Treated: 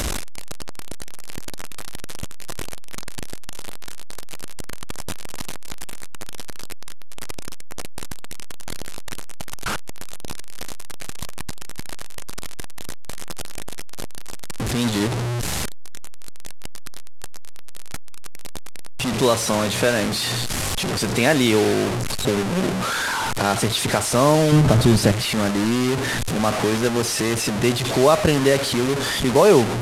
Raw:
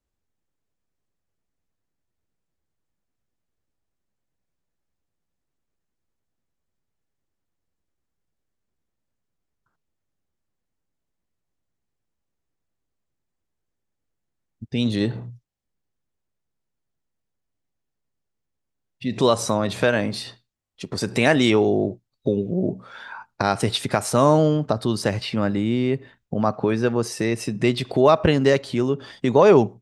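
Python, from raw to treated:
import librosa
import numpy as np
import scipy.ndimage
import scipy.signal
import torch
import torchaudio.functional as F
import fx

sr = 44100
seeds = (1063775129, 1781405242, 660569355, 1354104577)

y = fx.delta_mod(x, sr, bps=64000, step_db=-17.5)
y = fx.low_shelf(y, sr, hz=280.0, db=12.0, at=(24.52, 25.12))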